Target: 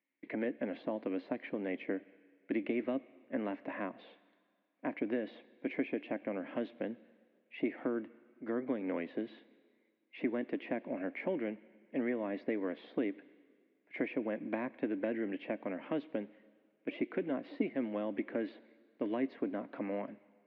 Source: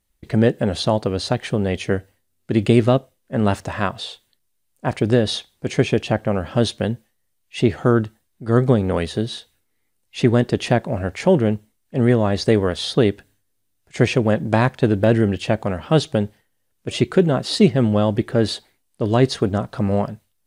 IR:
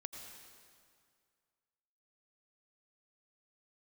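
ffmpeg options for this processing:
-filter_complex "[0:a]acrossover=split=450|1100[a][b][c];[a]acompressor=threshold=-25dB:ratio=4[d];[b]acompressor=threshold=-31dB:ratio=4[e];[c]acompressor=threshold=-40dB:ratio=4[f];[d][e][f]amix=inputs=3:normalize=0,highpass=f=260:w=0.5412,highpass=f=260:w=1.3066,equalizer=f=280:t=q:w=4:g=9,equalizer=f=410:t=q:w=4:g=-6,equalizer=f=800:t=q:w=4:g=-6,equalizer=f=1.3k:t=q:w=4:g=-8,equalizer=f=2.2k:t=q:w=4:g=9,lowpass=f=2.4k:w=0.5412,lowpass=f=2.4k:w=1.3066,asplit=2[g][h];[1:a]atrim=start_sample=2205,lowpass=5.5k,highshelf=f=2.6k:g=11.5[i];[h][i]afir=irnorm=-1:irlink=0,volume=-15dB[j];[g][j]amix=inputs=2:normalize=0,volume=-8.5dB"

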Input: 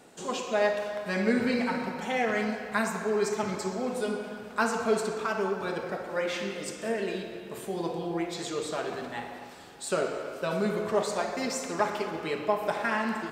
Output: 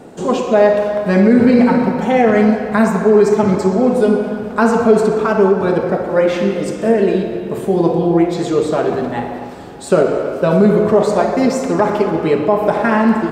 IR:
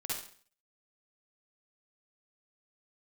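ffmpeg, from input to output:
-af "tiltshelf=f=1.1k:g=8,alimiter=level_in=13.5dB:limit=-1dB:release=50:level=0:latency=1,volume=-1dB"

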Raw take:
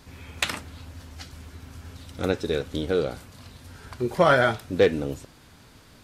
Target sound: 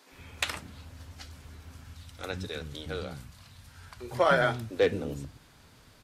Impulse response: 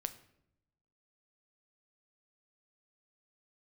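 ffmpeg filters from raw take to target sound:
-filter_complex "[0:a]asettb=1/sr,asplit=3[a][b][c];[a]atrim=end=1.834[d];[b]atrim=start=1.83:end=4.08,asetpts=PTS-STARTPTS,afade=t=in:d=0.004:c=qsin,afade=t=out:st=2.246:d=0.004:c=qsin,equalizer=f=390:t=o:w=1.6:g=-9[e];[c]atrim=start=4.076[f];[d][e]acrossfade=d=0.004:c1=hsin:c2=qsin[g];[g][f]acrossfade=d=0.004:c1=qsin:c2=hsin,acrossover=split=280[h][i];[h]adelay=120[j];[j][i]amix=inputs=2:normalize=0,volume=-4.5dB"

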